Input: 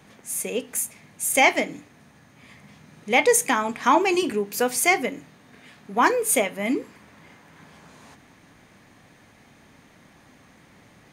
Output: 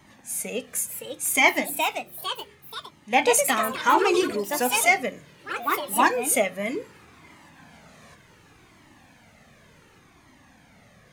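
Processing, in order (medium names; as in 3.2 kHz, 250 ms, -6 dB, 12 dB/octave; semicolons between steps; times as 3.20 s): 1.66–3.13 s: feedback comb 72 Hz, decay 0.26 s, harmonics all, mix 70%; ever faster or slower copies 637 ms, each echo +3 st, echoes 3, each echo -6 dB; Shepard-style flanger falling 0.68 Hz; trim +3 dB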